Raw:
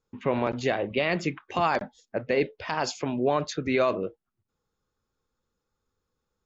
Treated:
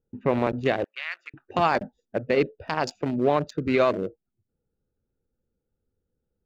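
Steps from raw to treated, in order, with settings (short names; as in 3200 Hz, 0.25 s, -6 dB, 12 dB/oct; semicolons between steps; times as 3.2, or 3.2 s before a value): Wiener smoothing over 41 samples; 0.84–1.34 ladder high-pass 1200 Hz, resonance 45%; gain +3.5 dB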